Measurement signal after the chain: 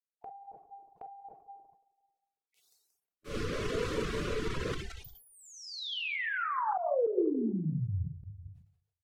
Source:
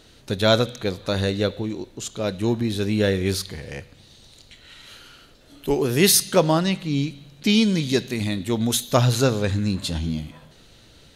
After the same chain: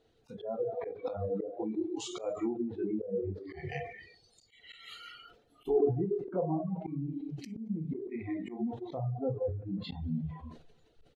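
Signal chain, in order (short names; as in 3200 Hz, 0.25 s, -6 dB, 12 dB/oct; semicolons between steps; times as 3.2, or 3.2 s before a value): treble ducked by the level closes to 650 Hz, closed at -17.5 dBFS; feedback echo 0.18 s, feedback 42%, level -17 dB; non-linear reverb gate 0.47 s falling, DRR 0 dB; reverb removal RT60 0.61 s; compressor 12:1, threshold -31 dBFS; spectral noise reduction 22 dB; high shelf 4200 Hz -6 dB; small resonant body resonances 440/720 Hz, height 12 dB, ringing for 30 ms; auto swell 0.131 s; tone controls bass +1 dB, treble -3 dB; sustainer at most 100 dB/s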